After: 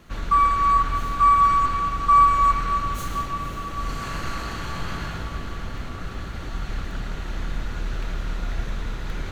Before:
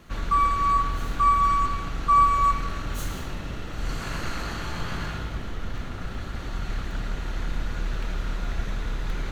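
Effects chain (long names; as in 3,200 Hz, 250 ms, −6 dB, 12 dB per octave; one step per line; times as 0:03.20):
dynamic equaliser 1,400 Hz, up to +4 dB, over −33 dBFS, Q 0.83
feedback delay with all-pass diffusion 516 ms, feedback 66%, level −11 dB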